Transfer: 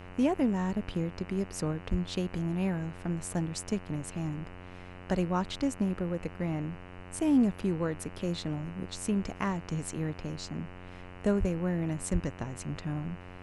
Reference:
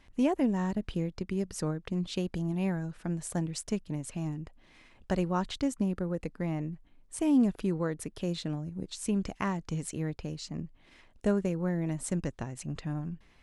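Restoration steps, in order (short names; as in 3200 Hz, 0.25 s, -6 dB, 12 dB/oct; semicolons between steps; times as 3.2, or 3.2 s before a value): de-hum 90.7 Hz, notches 33; 1.9–2.02 HPF 140 Hz 24 dB/oct; 11.39–11.51 HPF 140 Hz 24 dB/oct; 12.12–12.24 HPF 140 Hz 24 dB/oct; noise print and reduce 13 dB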